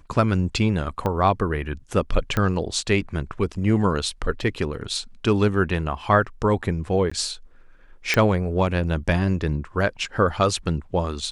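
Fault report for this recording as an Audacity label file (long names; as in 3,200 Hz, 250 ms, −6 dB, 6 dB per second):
1.060000	1.060000	click −13 dBFS
2.370000	2.370000	click −9 dBFS
4.550000	4.550000	drop-out 3.2 ms
7.100000	7.120000	drop-out 15 ms
8.140000	8.140000	click −5 dBFS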